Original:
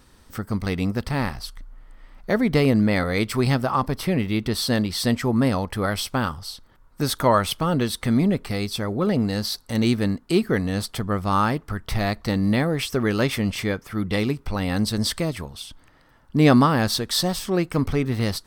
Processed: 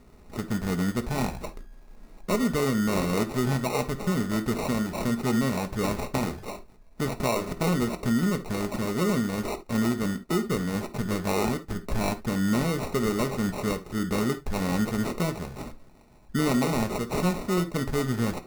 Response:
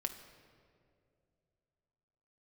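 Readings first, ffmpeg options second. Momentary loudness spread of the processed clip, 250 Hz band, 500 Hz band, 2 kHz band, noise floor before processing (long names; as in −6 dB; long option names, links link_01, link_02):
7 LU, −4.0 dB, −4.0 dB, −5.5 dB, −55 dBFS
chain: -filter_complex "[0:a]acrossover=split=5100[link_01][link_02];[link_02]asoftclip=type=tanh:threshold=-32.5dB[link_03];[link_01][link_03]amix=inputs=2:normalize=0,acrusher=samples=27:mix=1:aa=0.000001,asplit=2[link_04][link_05];[link_05]acompressor=threshold=-31dB:ratio=6,volume=-1.5dB[link_06];[link_04][link_06]amix=inputs=2:normalize=0,equalizer=frequency=3100:width=4.3:gain=-6[link_07];[1:a]atrim=start_sample=2205,atrim=end_sample=3528[link_08];[link_07][link_08]afir=irnorm=-1:irlink=0,alimiter=limit=-11.5dB:level=0:latency=1:release=276,volume=-4dB"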